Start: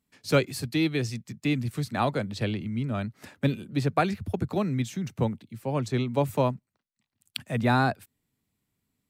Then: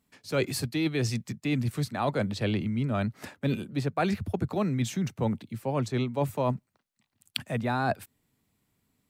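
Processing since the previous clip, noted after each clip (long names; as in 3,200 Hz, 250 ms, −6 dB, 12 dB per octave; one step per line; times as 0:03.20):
parametric band 790 Hz +3 dB 2 octaves
reversed playback
downward compressor 6 to 1, threshold −29 dBFS, peak gain reduction 14 dB
reversed playback
level +4.5 dB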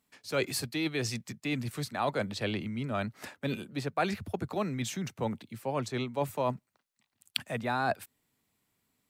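low-shelf EQ 320 Hz −9 dB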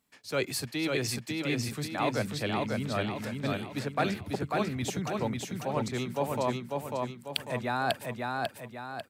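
repeating echo 545 ms, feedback 45%, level −3 dB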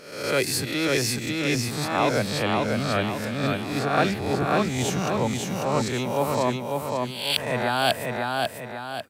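peak hold with a rise ahead of every peak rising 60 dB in 0.77 s
level +4.5 dB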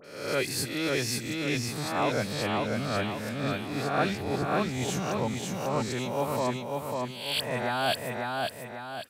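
all-pass dispersion highs, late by 47 ms, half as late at 2,400 Hz
level −5 dB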